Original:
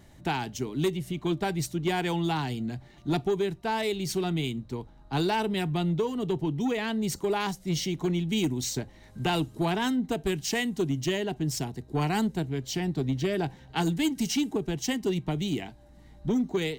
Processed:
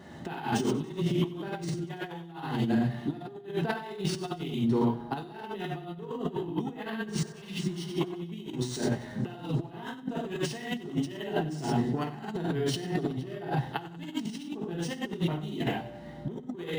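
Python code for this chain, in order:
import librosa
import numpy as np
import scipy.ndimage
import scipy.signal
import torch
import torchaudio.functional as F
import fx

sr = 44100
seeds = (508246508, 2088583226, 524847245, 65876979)

p1 = scipy.signal.sosfilt(scipy.signal.butter(2, 160.0, 'highpass', fs=sr, output='sos'), x)
p2 = fx.notch(p1, sr, hz=2300.0, q=7.8)
p3 = fx.rev_gated(p2, sr, seeds[0], gate_ms=150, shape='flat', drr_db=-4.0)
p4 = fx.over_compress(p3, sr, threshold_db=-31.0, ratio=-0.5)
p5 = p4 + fx.echo_feedback(p4, sr, ms=94, feedback_pct=60, wet_db=-17.5, dry=0)
p6 = fx.spec_repair(p5, sr, seeds[1], start_s=7.1, length_s=0.79, low_hz=370.0, high_hz=1900.0, source='both')
p7 = fx.high_shelf(p6, sr, hz=4900.0, db=-10.5)
y = np.interp(np.arange(len(p7)), np.arange(len(p7))[::3], p7[::3])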